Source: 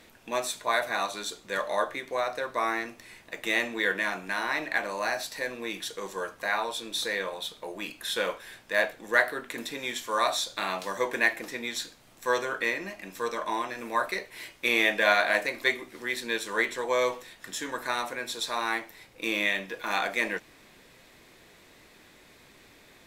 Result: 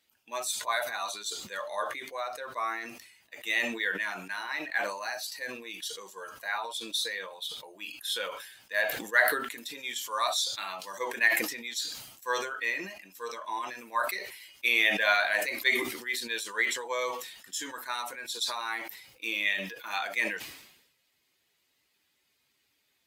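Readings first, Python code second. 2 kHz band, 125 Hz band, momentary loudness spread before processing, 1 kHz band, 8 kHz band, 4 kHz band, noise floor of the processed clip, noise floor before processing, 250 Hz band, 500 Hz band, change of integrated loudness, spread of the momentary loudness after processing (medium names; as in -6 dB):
-1.0 dB, no reading, 11 LU, -3.5 dB, +1.5 dB, 0.0 dB, -74 dBFS, -56 dBFS, -6.0 dB, -6.0 dB, -1.5 dB, 14 LU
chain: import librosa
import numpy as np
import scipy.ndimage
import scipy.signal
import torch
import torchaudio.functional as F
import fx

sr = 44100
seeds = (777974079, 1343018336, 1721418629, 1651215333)

y = fx.bin_expand(x, sr, power=1.5)
y = fx.highpass(y, sr, hz=1300.0, slope=6)
y = fx.sustainer(y, sr, db_per_s=64.0)
y = y * librosa.db_to_amplitude(3.0)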